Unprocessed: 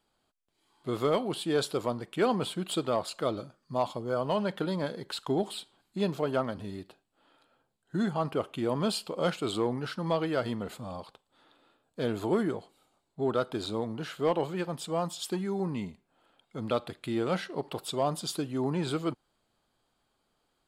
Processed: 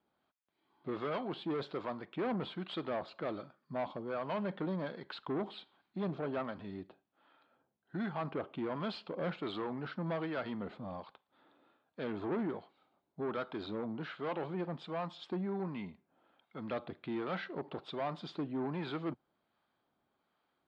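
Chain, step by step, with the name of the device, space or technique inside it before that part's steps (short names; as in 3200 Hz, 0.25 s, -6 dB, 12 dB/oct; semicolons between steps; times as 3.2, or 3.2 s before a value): guitar amplifier with harmonic tremolo (harmonic tremolo 1.3 Hz, depth 50%, crossover 740 Hz; soft clip -30.5 dBFS, distortion -9 dB; speaker cabinet 100–3400 Hz, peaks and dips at 120 Hz -6 dB, 460 Hz -3 dB, 2900 Hz -5 dB)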